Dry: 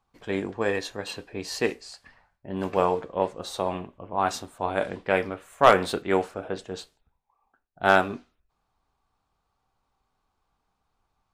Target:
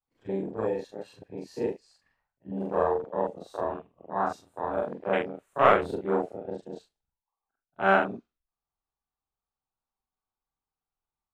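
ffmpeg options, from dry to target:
-af "afftfilt=real='re':imag='-im':win_size=4096:overlap=0.75,afwtdn=0.0251,volume=1.26"

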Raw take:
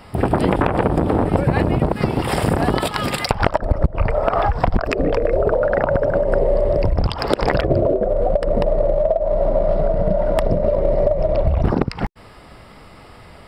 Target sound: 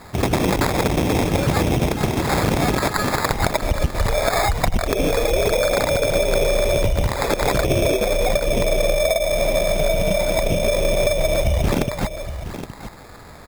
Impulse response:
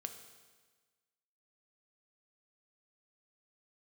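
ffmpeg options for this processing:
-filter_complex "[0:a]crystalizer=i=2.5:c=0,acrusher=samples=15:mix=1:aa=0.000001,acontrast=85,asplit=2[s0][s1];[s1]aecho=0:1:819:0.282[s2];[s0][s2]amix=inputs=2:normalize=0,volume=0.422"

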